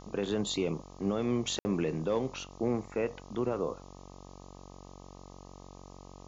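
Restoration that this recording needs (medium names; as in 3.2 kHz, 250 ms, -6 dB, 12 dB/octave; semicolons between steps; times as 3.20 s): de-hum 46.6 Hz, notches 27; room tone fill 1.59–1.65 s; noise reduction 29 dB, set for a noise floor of -50 dBFS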